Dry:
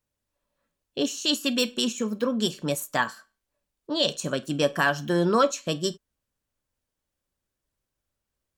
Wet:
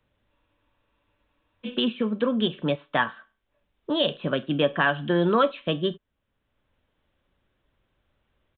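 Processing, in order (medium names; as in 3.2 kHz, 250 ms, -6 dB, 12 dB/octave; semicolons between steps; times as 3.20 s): resampled via 8 kHz; spectral freeze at 0.33 s, 1.34 s; three bands compressed up and down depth 40%; trim +1.5 dB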